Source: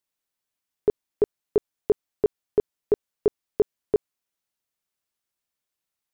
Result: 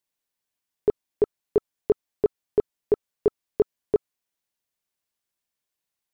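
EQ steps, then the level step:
notch filter 1,300 Hz, Q 15
0.0 dB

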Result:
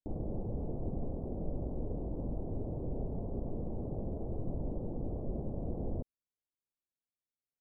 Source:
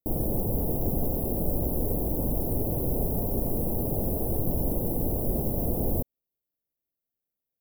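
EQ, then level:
head-to-tape spacing loss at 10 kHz 38 dB
−8.5 dB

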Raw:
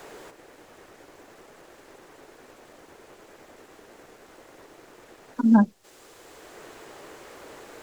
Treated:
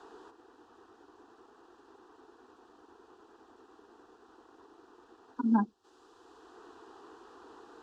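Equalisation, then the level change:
high-pass filter 99 Hz 6 dB per octave
low-pass filter 3,600 Hz 12 dB per octave
phaser with its sweep stopped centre 580 Hz, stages 6
−4.5 dB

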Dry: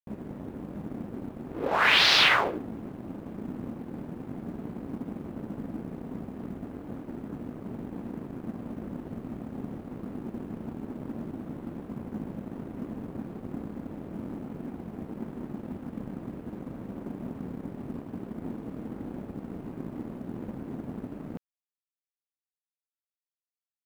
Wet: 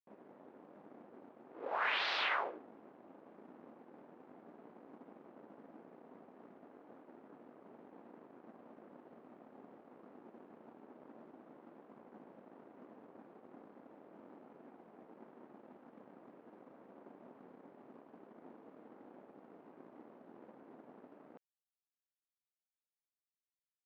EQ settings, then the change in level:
high-pass filter 550 Hz 12 dB per octave
low-pass filter 4,400 Hz 12 dB per octave
high-shelf EQ 2,100 Hz −12 dB
−8.0 dB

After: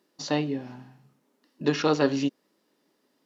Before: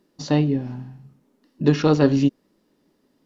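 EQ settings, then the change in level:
high-pass filter 620 Hz 6 dB per octave
0.0 dB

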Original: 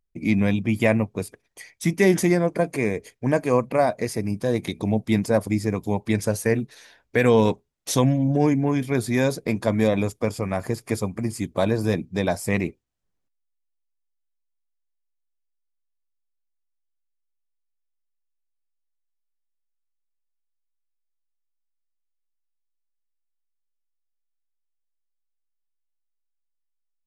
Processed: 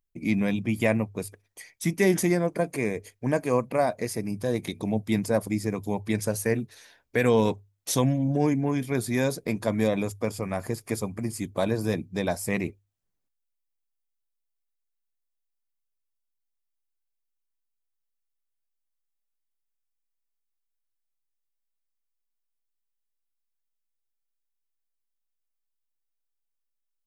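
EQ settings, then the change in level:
high-shelf EQ 10,000 Hz +8.5 dB
mains-hum notches 50/100 Hz
−4.0 dB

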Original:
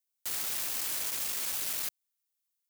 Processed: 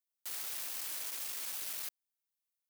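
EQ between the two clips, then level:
high-pass filter 360 Hz 6 dB per octave
parametric band 7,200 Hz −2 dB 0.22 octaves
−6.5 dB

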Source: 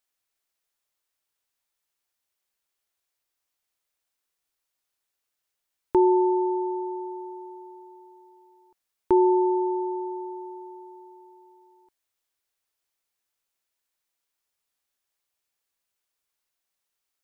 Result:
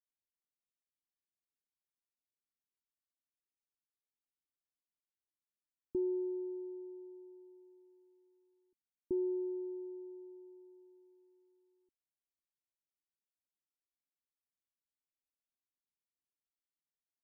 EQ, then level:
transistor ladder low-pass 350 Hz, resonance 40%
−6.0 dB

